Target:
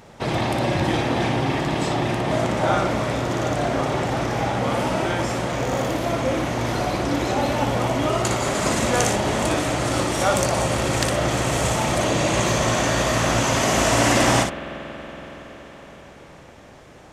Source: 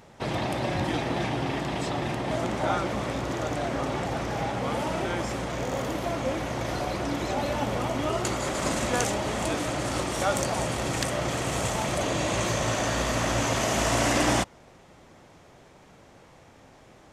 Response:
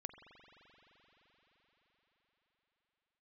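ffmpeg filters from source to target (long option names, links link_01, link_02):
-filter_complex "[0:a]asplit=2[link_01][link_02];[1:a]atrim=start_sample=2205,asetrate=41013,aresample=44100,adelay=59[link_03];[link_02][link_03]afir=irnorm=-1:irlink=0,volume=-1dB[link_04];[link_01][link_04]amix=inputs=2:normalize=0,volume=5dB"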